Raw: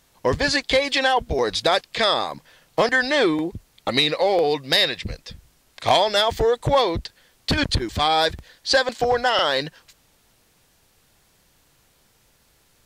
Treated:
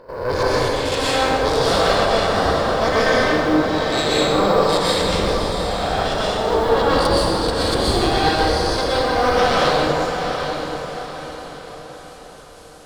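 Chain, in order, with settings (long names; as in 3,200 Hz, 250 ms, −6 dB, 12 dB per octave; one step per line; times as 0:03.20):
peak hold with a rise ahead of every peak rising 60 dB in 0.83 s
low-pass filter 11,000 Hz 24 dB per octave
gate on every frequency bin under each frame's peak −30 dB strong
octave-band graphic EQ 125/500/2,000 Hz −12/+4/−9 dB
reversed playback
downward compressor 6 to 1, threshold −30 dBFS, peak gain reduction 18.5 dB
reversed playback
noise that follows the level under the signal 35 dB
harmonic generator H 4 −8 dB, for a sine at −17.5 dBFS
gate pattern ".xxxx..x..xxx.xx" 176 BPM −12 dB
on a send: feedback delay with all-pass diffusion 769 ms, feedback 43%, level −7.5 dB
on the sum: dense smooth reverb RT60 2.8 s, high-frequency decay 0.45×, pre-delay 110 ms, DRR −9 dB
level +4.5 dB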